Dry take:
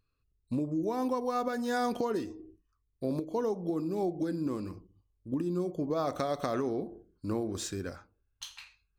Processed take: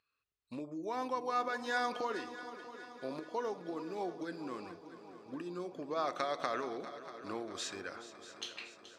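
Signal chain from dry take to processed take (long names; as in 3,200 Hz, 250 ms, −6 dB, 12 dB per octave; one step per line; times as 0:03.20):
low-pass filter 2,200 Hz 12 dB per octave
first difference
on a send: echo machine with several playback heads 213 ms, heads second and third, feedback 61%, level −14.5 dB
on the sum: level +16.5 dB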